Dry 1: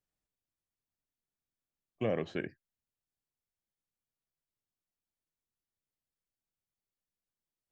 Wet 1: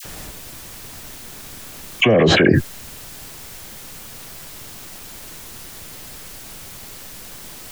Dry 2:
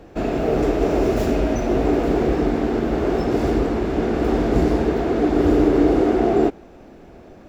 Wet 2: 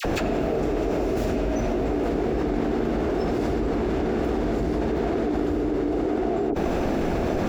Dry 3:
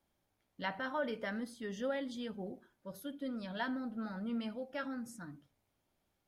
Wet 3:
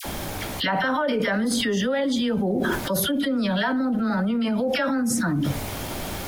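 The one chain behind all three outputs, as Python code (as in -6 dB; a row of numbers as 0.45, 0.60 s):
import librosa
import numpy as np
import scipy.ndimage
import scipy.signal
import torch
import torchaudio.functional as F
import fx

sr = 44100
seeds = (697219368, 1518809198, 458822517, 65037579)

y = fx.dispersion(x, sr, late='lows', ms=49.0, hz=1300.0)
y = fx.env_flatten(y, sr, amount_pct=100)
y = y * 10.0 ** (-24 / 20.0) / np.sqrt(np.mean(np.square(y)))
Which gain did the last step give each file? +16.5, -11.0, +10.0 dB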